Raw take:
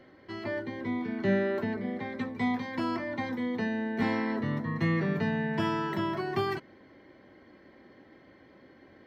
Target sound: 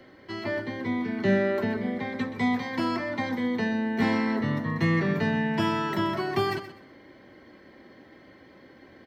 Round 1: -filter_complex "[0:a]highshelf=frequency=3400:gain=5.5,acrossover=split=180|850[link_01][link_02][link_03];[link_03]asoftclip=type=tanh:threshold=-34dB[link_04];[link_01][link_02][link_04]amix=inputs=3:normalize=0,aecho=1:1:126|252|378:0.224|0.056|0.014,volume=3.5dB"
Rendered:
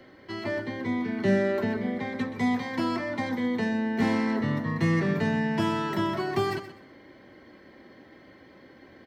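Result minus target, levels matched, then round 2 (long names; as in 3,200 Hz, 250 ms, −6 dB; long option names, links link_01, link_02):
soft clipping: distortion +12 dB
-filter_complex "[0:a]highshelf=frequency=3400:gain=5.5,acrossover=split=180|850[link_01][link_02][link_03];[link_03]asoftclip=type=tanh:threshold=-25.5dB[link_04];[link_01][link_02][link_04]amix=inputs=3:normalize=0,aecho=1:1:126|252|378:0.224|0.056|0.014,volume=3.5dB"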